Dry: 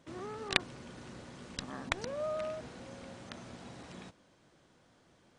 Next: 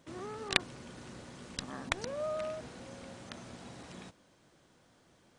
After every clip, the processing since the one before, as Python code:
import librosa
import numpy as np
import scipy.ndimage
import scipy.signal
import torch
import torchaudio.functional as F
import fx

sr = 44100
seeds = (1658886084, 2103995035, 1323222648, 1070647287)

y = fx.high_shelf(x, sr, hz=8400.0, db=7.0)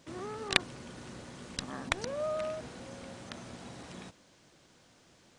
y = fx.dmg_noise_band(x, sr, seeds[0], low_hz=1500.0, high_hz=7200.0, level_db=-71.0)
y = y * librosa.db_to_amplitude(2.0)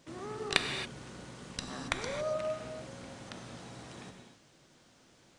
y = fx.rev_gated(x, sr, seeds[1], gate_ms=300, shape='flat', drr_db=4.0)
y = y * librosa.db_to_amplitude(-2.0)